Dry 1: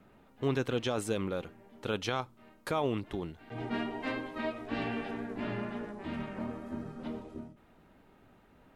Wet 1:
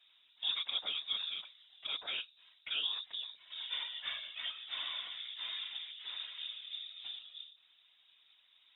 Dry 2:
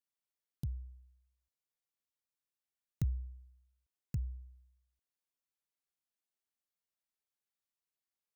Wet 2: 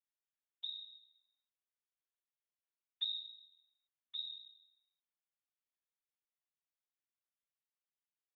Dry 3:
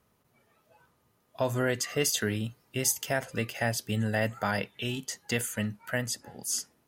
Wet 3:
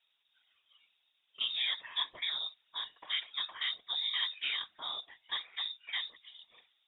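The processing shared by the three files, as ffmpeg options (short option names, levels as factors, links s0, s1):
-filter_complex "[0:a]acrossover=split=2600[s0][s1];[s1]acompressor=threshold=0.0112:ratio=4:attack=1:release=60[s2];[s0][s2]amix=inputs=2:normalize=0,lowpass=f=3200:t=q:w=0.5098,lowpass=f=3200:t=q:w=0.6013,lowpass=f=3200:t=q:w=0.9,lowpass=f=3200:t=q:w=2.563,afreqshift=-3800,afftfilt=real='hypot(re,im)*cos(2*PI*random(0))':imag='hypot(re,im)*sin(2*PI*random(1))':win_size=512:overlap=0.75"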